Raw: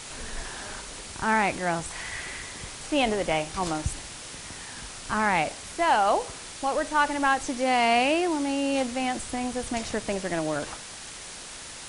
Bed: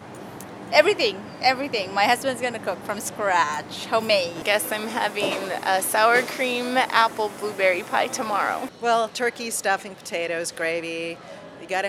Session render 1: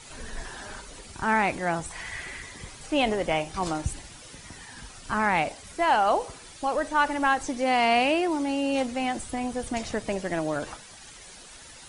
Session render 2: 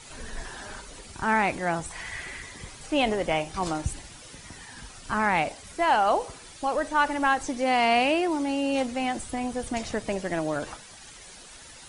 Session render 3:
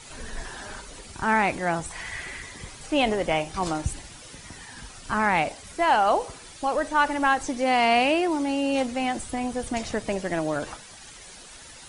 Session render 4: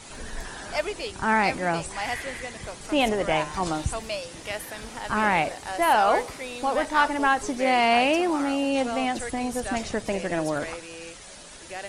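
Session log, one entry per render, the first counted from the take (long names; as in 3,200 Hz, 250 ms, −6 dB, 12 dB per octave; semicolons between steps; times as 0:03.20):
broadband denoise 10 dB, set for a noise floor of −41 dBFS
no processing that can be heard
level +1.5 dB
mix in bed −12 dB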